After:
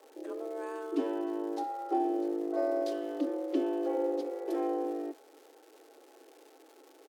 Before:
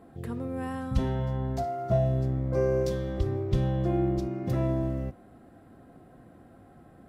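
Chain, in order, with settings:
surface crackle 510 per second −44 dBFS
pitch shifter −3.5 semitones
frequency shifter +240 Hz
level −5 dB

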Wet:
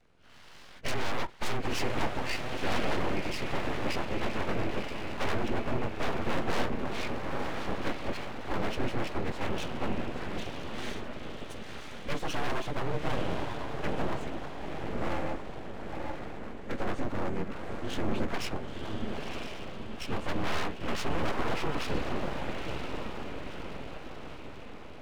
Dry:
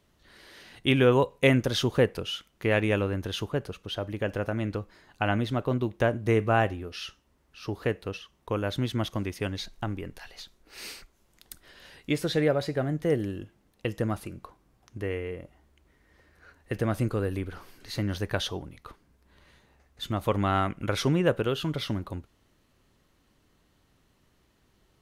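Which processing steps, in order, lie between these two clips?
partials spread apart or drawn together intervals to 90%
bass and treble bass +2 dB, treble −12 dB
in parallel at −2.5 dB: downward compressor, threshold −33 dBFS, peak gain reduction 15.5 dB
on the sum: hard clipping −23.5 dBFS, distortion −9 dB
on a send: feedback delay with all-pass diffusion 970 ms, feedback 56%, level −4.5 dB
on the sum: full-wave rectification

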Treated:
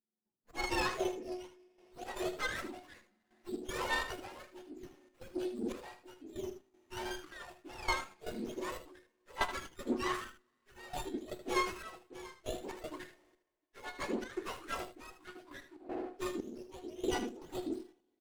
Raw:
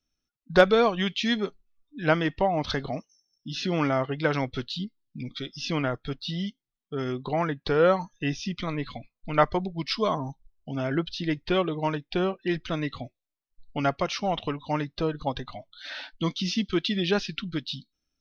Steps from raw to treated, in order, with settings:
frequency axis turned over on the octave scale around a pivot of 1,100 Hz
high-pass filter 280 Hz 12 dB per octave
high-shelf EQ 5,300 Hz −10 dB
in parallel at −3 dB: downward compressor, threshold −36 dBFS, peak gain reduction 19 dB
on the sum: tuned comb filter 360 Hz, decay 0.18 s, harmonics all, mix 70%
coupled-rooms reverb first 0.23 s, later 2.6 s, from −18 dB, DRR 14 dB
gate pattern "..xx.xxxx..." 118 BPM −12 dB
on a send: single-tap delay 77 ms −11 dB
on the sum: windowed peak hold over 9 samples
level +1.5 dB

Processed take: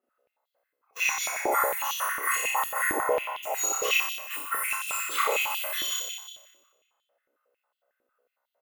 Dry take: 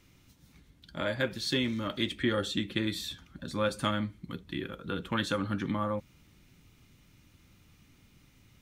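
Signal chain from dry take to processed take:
frequency axis turned over on the octave scale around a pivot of 1,900 Hz
noise gate −51 dBFS, range −25 dB
in parallel at −3 dB: downward compressor, threshold −44 dBFS, peak gain reduction 14.5 dB
on the sum: healed spectral selection 0:03.14–0:03.76, 1,400–3,600 Hz after
on a send at −17.5 dB: convolution reverb RT60 2.7 s, pre-delay 6 ms
on the sum: speech leveller within 4 dB 0.5 s
comb filter 1.5 ms, depth 54%
flutter between parallel walls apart 5.2 metres, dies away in 1.1 s
high-pass on a step sequencer 11 Hz 330–3,400 Hz

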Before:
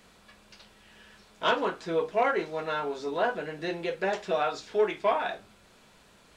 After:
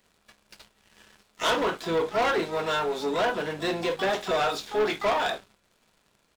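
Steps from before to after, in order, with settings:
mains-hum notches 60/120/180/240 Hz
pitch-shifted copies added −7 semitones −15 dB, +12 semitones −12 dB
dynamic equaliser 3,600 Hz, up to +6 dB, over −57 dBFS, Q 4.9
leveller curve on the samples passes 3
level −6 dB

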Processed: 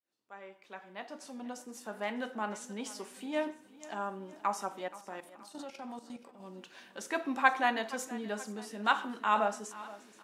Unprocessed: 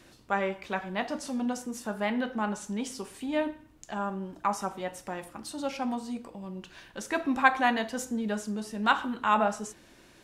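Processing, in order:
fade in at the beginning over 2.57 s
high-pass filter 280 Hz 12 dB per octave
0:04.88–0:06.40: output level in coarse steps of 13 dB
on a send: repeating echo 476 ms, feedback 50%, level −18 dB
on the sum: level −3.5 dB

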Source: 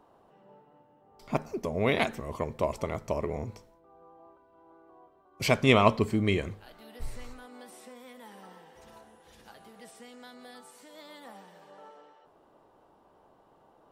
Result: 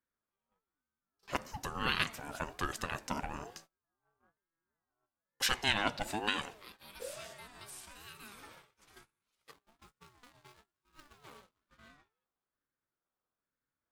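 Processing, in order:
0:09.51–0:11.91: running median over 25 samples
mains-hum notches 50/100/150/200/250 Hz
noise gate −51 dBFS, range −28 dB
tilt shelving filter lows −8.5 dB
downward compressor 3 to 1, threshold −26 dBFS, peak gain reduction 9.5 dB
ring modulator whose carrier an LFO sweeps 510 Hz, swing 30%, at 1.1 Hz

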